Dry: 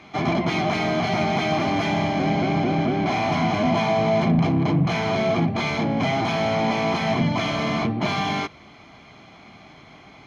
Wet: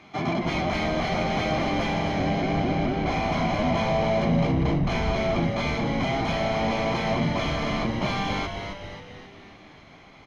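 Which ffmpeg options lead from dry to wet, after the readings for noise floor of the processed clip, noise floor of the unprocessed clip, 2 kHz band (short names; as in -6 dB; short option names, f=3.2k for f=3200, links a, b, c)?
-49 dBFS, -48 dBFS, -3.0 dB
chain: -filter_complex "[0:a]asplit=8[a][b][c][d][e][f][g][h];[b]adelay=268,afreqshift=-97,volume=-6.5dB[i];[c]adelay=536,afreqshift=-194,volume=-12dB[j];[d]adelay=804,afreqshift=-291,volume=-17.5dB[k];[e]adelay=1072,afreqshift=-388,volume=-23dB[l];[f]adelay=1340,afreqshift=-485,volume=-28.6dB[m];[g]adelay=1608,afreqshift=-582,volume=-34.1dB[n];[h]adelay=1876,afreqshift=-679,volume=-39.6dB[o];[a][i][j][k][l][m][n][o]amix=inputs=8:normalize=0,volume=-4dB"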